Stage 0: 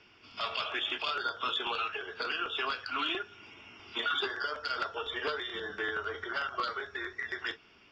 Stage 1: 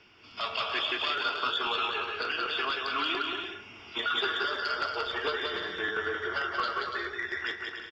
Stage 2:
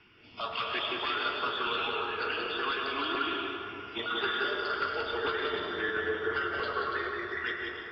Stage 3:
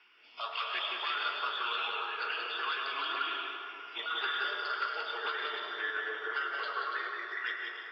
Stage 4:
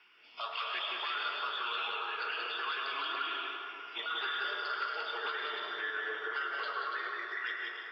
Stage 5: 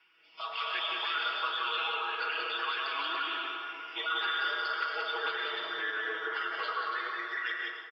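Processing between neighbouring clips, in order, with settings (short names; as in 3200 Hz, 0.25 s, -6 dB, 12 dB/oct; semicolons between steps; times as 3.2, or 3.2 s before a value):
bouncing-ball echo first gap 0.18 s, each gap 0.6×, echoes 5; gain +1.5 dB
LFO notch saw up 1.9 Hz 520–2600 Hz; air absorption 230 m; on a send at -3 dB: reverb RT60 3.1 s, pre-delay 93 ms; on the sum: gain +1.5 dB
HPF 740 Hz 12 dB/oct; gain -1.5 dB
bell 160 Hz +9.5 dB 0.22 oct; in parallel at +2 dB: limiter -28.5 dBFS, peak gain reduction 7.5 dB; on the sum: gain -7 dB
comb 6.2 ms, depth 79%; AGC gain up to 7 dB; gain -6 dB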